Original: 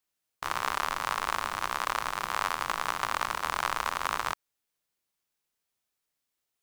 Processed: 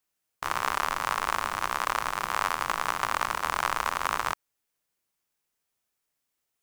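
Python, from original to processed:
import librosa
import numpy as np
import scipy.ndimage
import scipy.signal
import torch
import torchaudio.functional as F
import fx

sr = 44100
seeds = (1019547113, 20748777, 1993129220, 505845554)

y = fx.peak_eq(x, sr, hz=3900.0, db=-3.0, octaves=0.77)
y = y * 10.0 ** (2.5 / 20.0)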